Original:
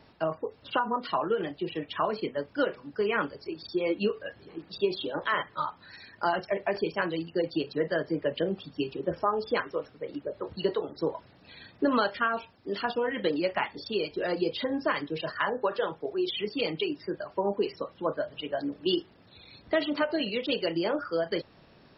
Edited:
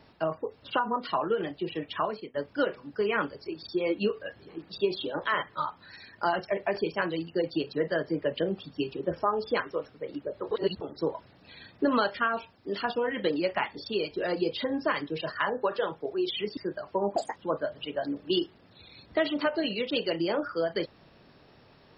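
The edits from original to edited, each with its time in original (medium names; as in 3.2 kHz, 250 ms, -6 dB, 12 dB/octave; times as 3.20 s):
1.98–2.34 s: fade out linear, to -18.5 dB
10.51–10.81 s: reverse
16.57–17.00 s: delete
17.59–17.92 s: speed 165%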